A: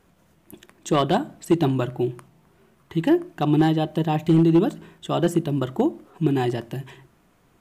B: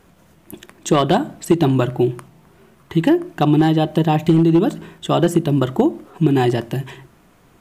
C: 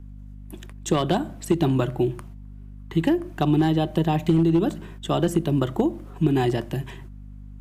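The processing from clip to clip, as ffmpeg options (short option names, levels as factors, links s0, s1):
-af "acompressor=threshold=0.126:ratio=6,volume=2.51"
-filter_complex "[0:a]agate=range=0.251:threshold=0.00794:ratio=16:detection=peak,aeval=exprs='val(0)+0.02*(sin(2*PI*50*n/s)+sin(2*PI*2*50*n/s)/2+sin(2*PI*3*50*n/s)/3+sin(2*PI*4*50*n/s)/4+sin(2*PI*5*50*n/s)/5)':c=same,acrossover=split=280|3000[s0][s1][s2];[s1]acompressor=threshold=0.178:ratio=6[s3];[s0][s3][s2]amix=inputs=3:normalize=0,volume=0.562"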